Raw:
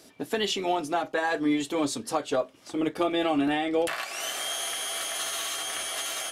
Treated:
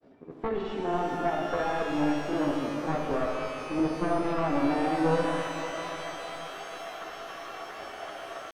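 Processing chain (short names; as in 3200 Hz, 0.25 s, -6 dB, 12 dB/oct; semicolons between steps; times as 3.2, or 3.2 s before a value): one-sided fold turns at -25.5 dBFS; LPF 1200 Hz 12 dB/oct; grains 0.1 s, spray 25 ms, pitch spread up and down by 0 st; tempo 0.74×; shimmer reverb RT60 3.1 s, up +12 st, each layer -8 dB, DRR 1 dB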